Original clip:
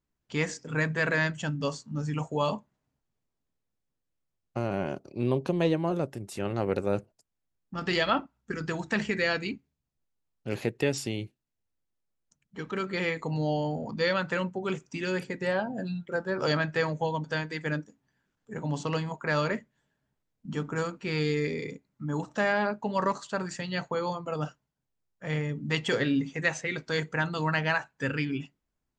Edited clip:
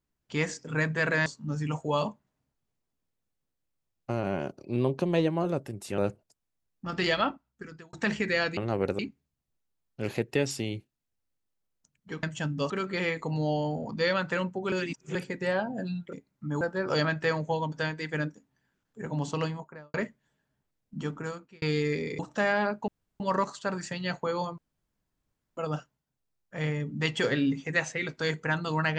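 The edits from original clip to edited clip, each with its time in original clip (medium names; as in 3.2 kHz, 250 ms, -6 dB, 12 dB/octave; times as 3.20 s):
1.26–1.73 s: move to 12.70 s
6.45–6.87 s: move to 9.46 s
8.02–8.82 s: fade out
14.72–15.15 s: reverse
18.88–19.46 s: studio fade out
20.50–21.14 s: fade out
21.71–22.19 s: move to 16.13 s
22.88 s: insert room tone 0.32 s
24.26 s: insert room tone 0.99 s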